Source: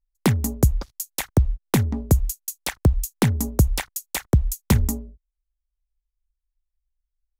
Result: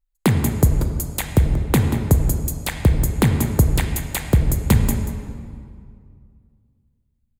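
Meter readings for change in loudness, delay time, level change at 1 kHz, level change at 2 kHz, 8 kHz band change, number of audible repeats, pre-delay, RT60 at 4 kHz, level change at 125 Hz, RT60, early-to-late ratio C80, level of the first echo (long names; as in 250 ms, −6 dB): +3.5 dB, 184 ms, +3.0 dB, +3.5 dB, +1.5 dB, 1, 34 ms, 1.5 s, +4.0 dB, 2.2 s, 5.5 dB, −11.0 dB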